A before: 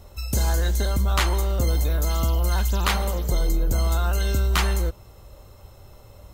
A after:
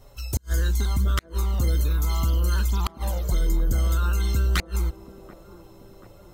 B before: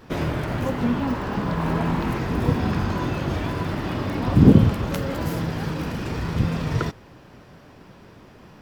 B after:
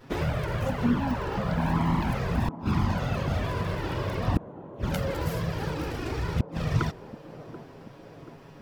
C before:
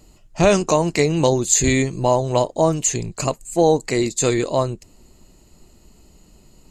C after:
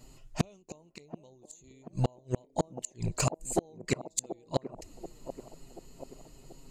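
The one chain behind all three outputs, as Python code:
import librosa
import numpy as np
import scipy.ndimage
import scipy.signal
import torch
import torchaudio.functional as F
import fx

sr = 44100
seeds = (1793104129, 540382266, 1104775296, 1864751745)

y = fx.env_flanger(x, sr, rest_ms=8.2, full_db=-15.0)
y = fx.gate_flip(y, sr, shuts_db=-13.0, range_db=-39)
y = fx.echo_wet_bandpass(y, sr, ms=733, feedback_pct=57, hz=420.0, wet_db=-10)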